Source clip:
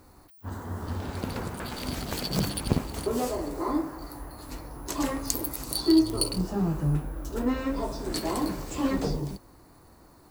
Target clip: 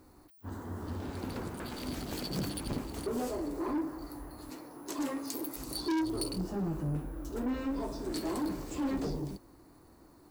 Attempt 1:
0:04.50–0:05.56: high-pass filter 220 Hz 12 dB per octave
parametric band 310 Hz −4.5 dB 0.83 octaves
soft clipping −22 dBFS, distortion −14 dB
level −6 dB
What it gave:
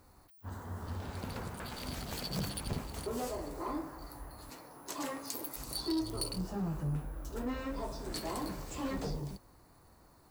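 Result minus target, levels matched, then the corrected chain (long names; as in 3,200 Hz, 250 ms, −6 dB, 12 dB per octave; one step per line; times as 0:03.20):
250 Hz band −2.5 dB
0:04.50–0:05.56: high-pass filter 220 Hz 12 dB per octave
parametric band 310 Hz +6.5 dB 0.83 octaves
soft clipping −22 dBFS, distortion −6 dB
level −6 dB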